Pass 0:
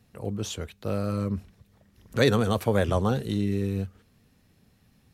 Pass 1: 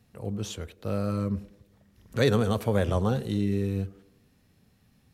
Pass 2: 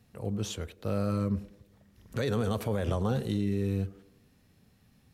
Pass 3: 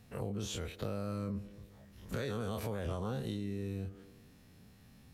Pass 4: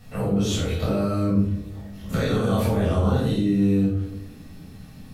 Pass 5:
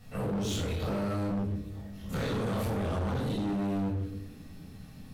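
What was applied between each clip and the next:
harmonic-percussive split percussive -4 dB; band-passed feedback delay 95 ms, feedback 54%, band-pass 410 Hz, level -16 dB
peak limiter -20 dBFS, peak gain reduction 10.5 dB
every event in the spectrogram widened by 60 ms; compression 4:1, threshold -36 dBFS, peak gain reduction 12 dB
simulated room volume 750 m³, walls furnished, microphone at 6.6 m; trim +5 dB
hard clipper -23.5 dBFS, distortion -8 dB; trim -5 dB

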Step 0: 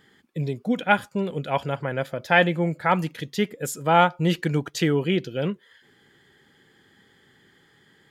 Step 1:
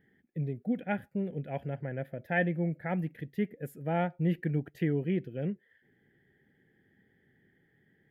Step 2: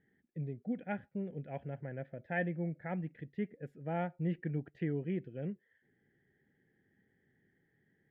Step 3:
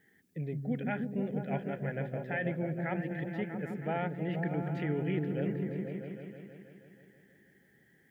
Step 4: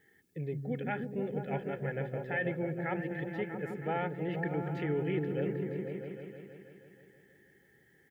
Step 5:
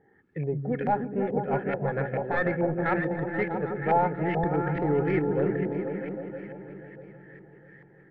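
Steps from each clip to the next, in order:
FFT filter 200 Hz 0 dB, 500 Hz -5 dB, 750 Hz -6 dB, 1.1 kHz -25 dB, 1.8 kHz -3 dB, 4 kHz -24 dB, 7.1 kHz -28 dB, 13 kHz -9 dB; trim -5.5 dB
low-pass 2.9 kHz 12 dB/octave; trim -6 dB
tilt EQ +2.5 dB/octave; peak limiter -33.5 dBFS, peak gain reduction 10.5 dB; delay with an opening low-pass 160 ms, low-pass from 200 Hz, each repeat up 1 oct, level 0 dB; trim +8.5 dB
comb 2.3 ms, depth 43%
tracing distortion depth 0.13 ms; LFO low-pass saw up 2.3 Hz 760–2100 Hz; echo whose repeats swap between lows and highs 323 ms, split 810 Hz, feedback 68%, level -11.5 dB; trim +6.5 dB

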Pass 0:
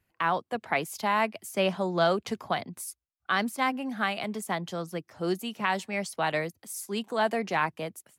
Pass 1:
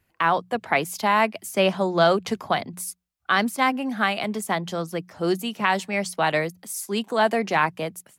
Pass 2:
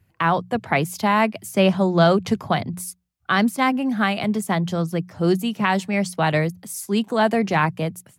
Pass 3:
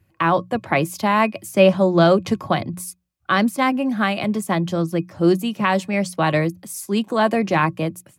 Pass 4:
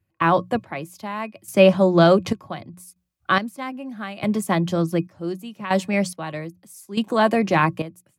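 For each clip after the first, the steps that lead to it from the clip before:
hum notches 60/120/180 Hz; trim +6 dB
peaking EQ 110 Hz +14.5 dB 1.9 oct
small resonant body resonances 330/560/1100/2500 Hz, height 9 dB, ringing for 95 ms
trance gate ".xx....xxxx.." 71 bpm -12 dB

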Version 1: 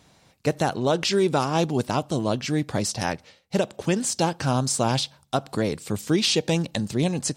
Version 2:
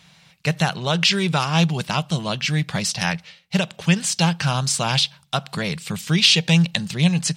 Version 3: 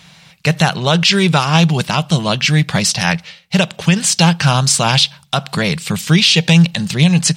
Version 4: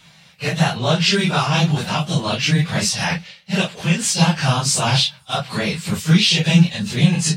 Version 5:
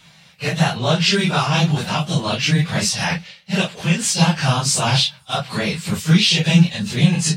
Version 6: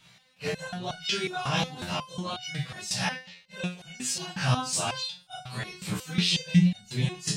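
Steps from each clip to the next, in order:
FFT filter 110 Hz 0 dB, 170 Hz +13 dB, 260 Hz -8 dB, 2.8 kHz +14 dB, 7.3 kHz +5 dB; trim -2.5 dB
peak limiter -10 dBFS, peak gain reduction 8 dB; trim +8.5 dB
phase randomisation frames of 100 ms; trim -4.5 dB
no audible change
resonator arpeggio 5.5 Hz 62–740 Hz

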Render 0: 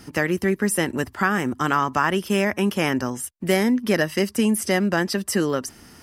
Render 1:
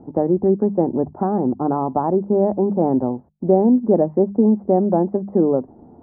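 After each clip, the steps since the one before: elliptic low-pass 820 Hz, stop band 80 dB; bass shelf 110 Hz -10.5 dB; hum notches 50/100/150/200 Hz; trim +7.5 dB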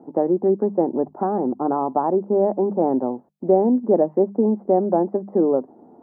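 high-pass 270 Hz 12 dB/octave

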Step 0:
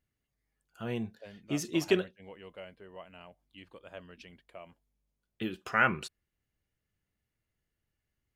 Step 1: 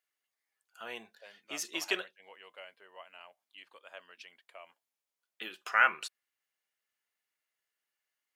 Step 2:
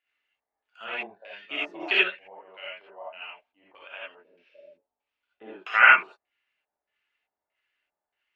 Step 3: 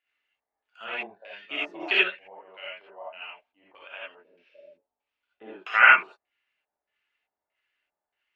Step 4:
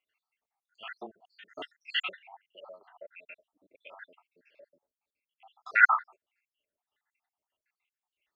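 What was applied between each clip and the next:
high-pass 850 Hz 12 dB/octave; trim +2 dB
spectral replace 4.22–4.87 s, 630–12000 Hz both; LFO low-pass square 1.6 Hz 760–2700 Hz; gated-style reverb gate 100 ms rising, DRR -7 dB; trim -1 dB
no audible change
random holes in the spectrogram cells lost 74%

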